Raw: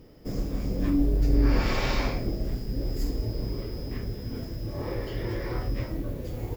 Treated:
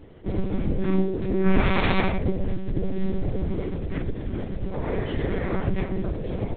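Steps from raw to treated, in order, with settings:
0:00.82–0:01.47: high-pass filter 130 Hz 12 dB per octave
one-pitch LPC vocoder at 8 kHz 190 Hz
level +5 dB

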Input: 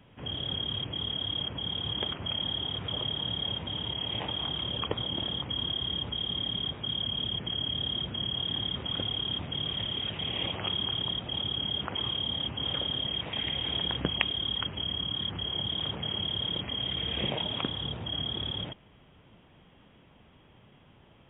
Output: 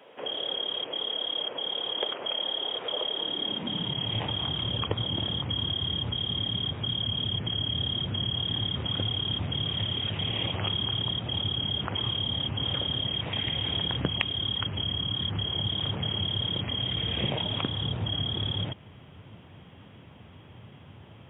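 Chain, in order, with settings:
downward compressor 1.5 to 1, threshold −41 dBFS, peak gain reduction 8 dB
high-pass filter sweep 490 Hz → 93 Hz, 0:03.09–0:04.22
level +6 dB

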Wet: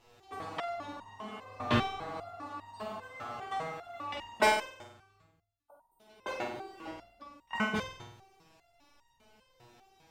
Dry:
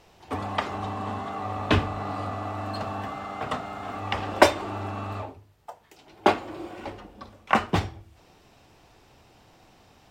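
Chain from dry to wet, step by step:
0:04.66–0:05.70: guitar amp tone stack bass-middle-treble 6-0-2
0:05.69–0:05.97: healed spectral selection 1,500–8,400 Hz before
flutter between parallel walls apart 8.2 metres, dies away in 0.7 s
step-sequenced resonator 5 Hz 120–930 Hz
level +4.5 dB

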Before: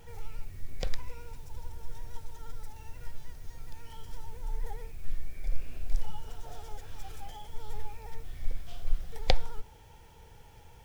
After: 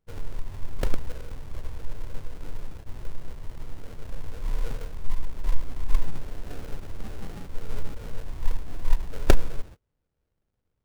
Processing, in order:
sample-rate reduction 1,000 Hz, jitter 20%
noise gate −42 dBFS, range −32 dB
level +6.5 dB

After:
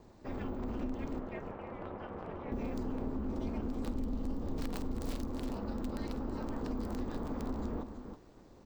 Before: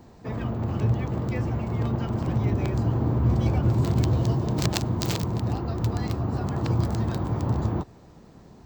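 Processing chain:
stylus tracing distortion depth 0.19 ms
soft clipping −17.5 dBFS, distortion −17 dB
0:01.19–0:02.52: three-way crossover with the lows and the highs turned down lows −21 dB, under 260 Hz, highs −21 dB, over 2,800 Hz
on a send: multi-tap delay 50/327 ms −15/−11 dB
on the sum: ring modulation 140 Hz
0:03.88–0:05.31: low-shelf EQ 180 Hz +6.5 dB
downward compressor 5 to 1, threshold −27 dBFS, peak gain reduction 10 dB
level −5 dB

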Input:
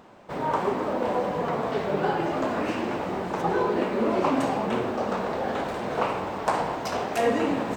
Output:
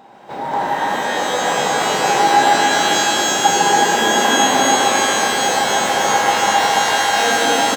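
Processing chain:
gate pattern "xxxx.x.xxxxx" 90 BPM
in parallel at +2 dB: downward compressor, threshold −33 dBFS, peak gain reduction 14 dB
on the sum: high-pass filter 180 Hz 6 dB per octave
notch filter 1,200 Hz, Q 11
hollow resonant body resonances 810/3,800 Hz, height 16 dB, ringing for 70 ms
on a send: loudspeakers that aren't time-aligned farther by 51 metres −4 dB, 96 metres −2 dB
on the sum: reverb with rising layers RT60 3.9 s, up +12 semitones, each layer −2 dB, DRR −2 dB
level −4 dB

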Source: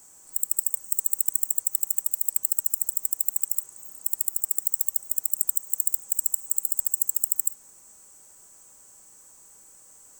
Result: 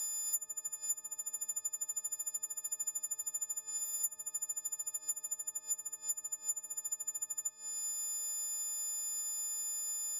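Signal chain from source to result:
every partial snapped to a pitch grid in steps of 6 semitones
high-shelf EQ 8,100 Hz −7 dB
treble cut that deepens with the level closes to 1,800 Hz, closed at −10 dBFS
transient designer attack +5 dB, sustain −5 dB
multiband upward and downward compressor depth 100%
level −5.5 dB

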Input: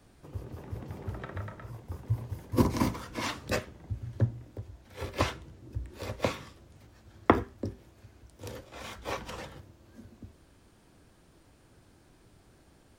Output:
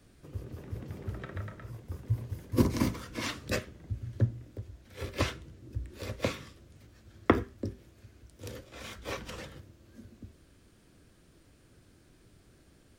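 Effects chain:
parametric band 860 Hz −8.5 dB 0.76 octaves

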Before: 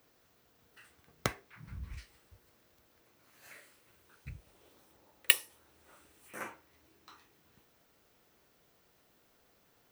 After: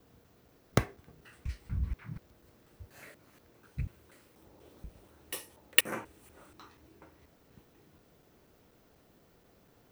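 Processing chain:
slices reordered back to front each 242 ms, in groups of 3
tilt shelving filter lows +5.5 dB, about 660 Hz
level +5.5 dB

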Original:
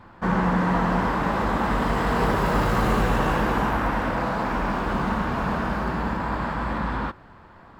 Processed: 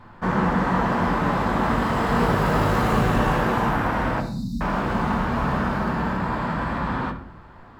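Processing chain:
0:04.20–0:04.61: linear-phase brick-wall band-stop 280–3,600 Hz
on a send: convolution reverb RT60 0.50 s, pre-delay 7 ms, DRR 5 dB

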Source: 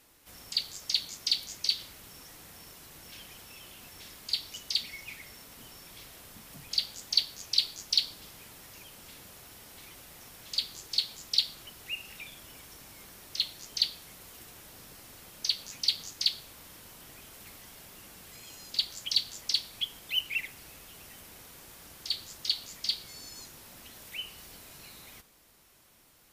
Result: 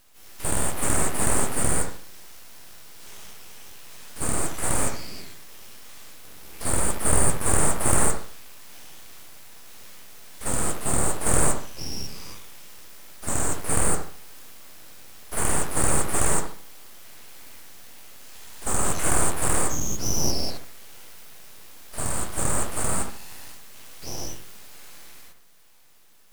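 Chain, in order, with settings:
every bin's largest magnitude spread in time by 240 ms
full-wave rectification
bucket-brigade delay 72 ms, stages 1,024, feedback 33%, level −6.5 dB

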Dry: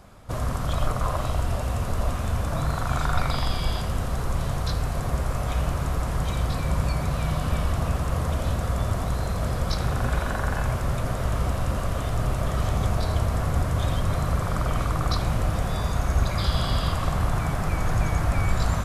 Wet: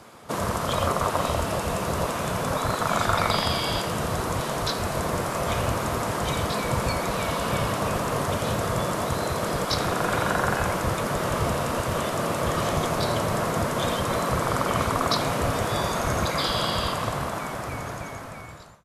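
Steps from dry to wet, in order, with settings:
fade-out on the ending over 2.74 s
frequency shifter −46 Hz
gate on every frequency bin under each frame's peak −10 dB weak
level +6.5 dB

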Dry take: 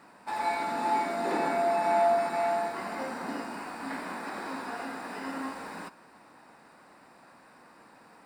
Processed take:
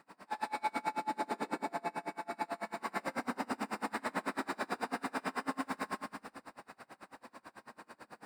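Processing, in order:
downward compressor 12 to 1, threshold −34 dBFS, peak gain reduction 14 dB
four-comb reverb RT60 2 s, combs from 29 ms, DRR −9.5 dB
tremolo with a sine in dB 9.1 Hz, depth 31 dB
level −2.5 dB

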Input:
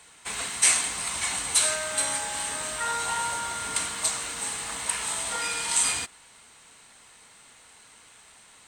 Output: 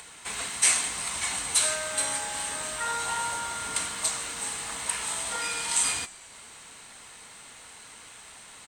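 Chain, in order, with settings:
in parallel at 0 dB: upward compression, threshold −31 dBFS
on the sum: echo with shifted repeats 148 ms, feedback 63%, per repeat −93 Hz, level −21.5 dB
level −7.5 dB

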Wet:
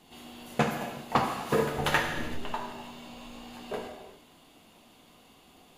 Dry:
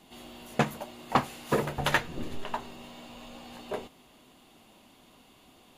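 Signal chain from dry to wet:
reverb whose tail is shaped and stops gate 420 ms falling, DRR 1.5 dB
level −1.5 dB

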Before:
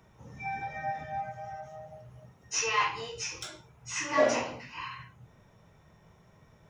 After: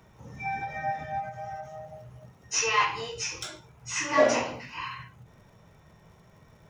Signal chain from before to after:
surface crackle 130 per second −59 dBFS
every ending faded ahead of time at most 150 dB per second
level +3.5 dB

